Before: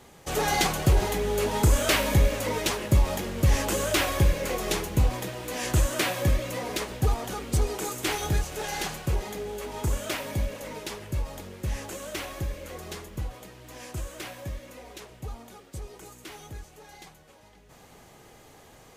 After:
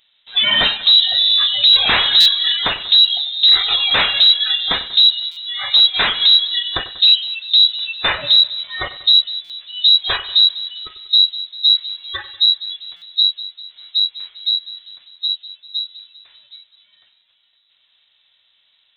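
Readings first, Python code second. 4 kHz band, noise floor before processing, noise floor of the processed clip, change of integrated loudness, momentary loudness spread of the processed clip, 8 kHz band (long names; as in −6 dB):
+25.5 dB, −53 dBFS, −61 dBFS, +15.0 dB, 15 LU, below −10 dB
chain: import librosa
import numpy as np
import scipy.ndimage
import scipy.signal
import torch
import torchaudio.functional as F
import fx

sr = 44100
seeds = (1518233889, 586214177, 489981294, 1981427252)

p1 = fx.wiener(x, sr, points=9)
p2 = fx.noise_reduce_blind(p1, sr, reduce_db=23)
p3 = fx.rider(p2, sr, range_db=3, speed_s=0.5)
p4 = p2 + (p3 * 10.0 ** (2.0 / 20.0))
p5 = np.clip(p4, -10.0 ** (-16.5 / 20.0), 10.0 ** (-16.5 / 20.0))
p6 = p5 + fx.echo_split(p5, sr, split_hz=660.0, low_ms=198, high_ms=95, feedback_pct=52, wet_db=-15.0, dry=0)
p7 = (np.kron(scipy.signal.resample_poly(p6, 1, 6), np.eye(6)[0]) * 6)[:len(p6)]
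p8 = fx.freq_invert(p7, sr, carrier_hz=3900)
p9 = fx.buffer_glitch(p8, sr, at_s=(2.2, 5.31, 9.44, 12.96), block=256, repeats=9)
y = p9 * 10.0 ** (7.0 / 20.0)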